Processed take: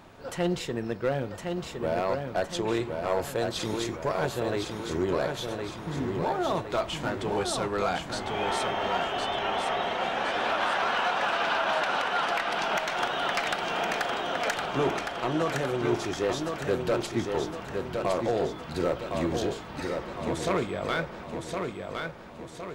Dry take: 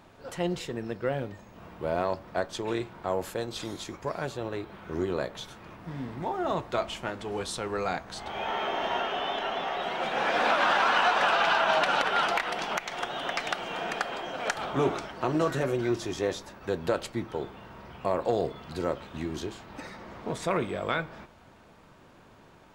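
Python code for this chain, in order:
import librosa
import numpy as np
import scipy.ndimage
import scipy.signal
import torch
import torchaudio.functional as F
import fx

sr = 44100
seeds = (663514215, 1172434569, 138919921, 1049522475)

p1 = fx.rider(x, sr, range_db=4, speed_s=0.5)
p2 = np.clip(p1, -10.0 ** (-19.5 / 20.0), 10.0 ** (-19.5 / 20.0))
y = p2 + fx.echo_feedback(p2, sr, ms=1062, feedback_pct=47, wet_db=-5, dry=0)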